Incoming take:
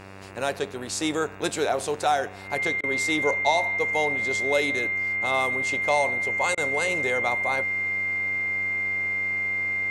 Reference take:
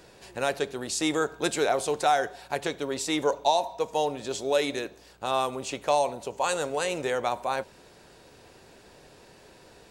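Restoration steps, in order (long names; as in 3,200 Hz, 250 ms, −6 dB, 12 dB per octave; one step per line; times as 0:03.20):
hum removal 96.7 Hz, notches 29
notch filter 2,100 Hz, Q 30
repair the gap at 0:02.81/0:06.55, 24 ms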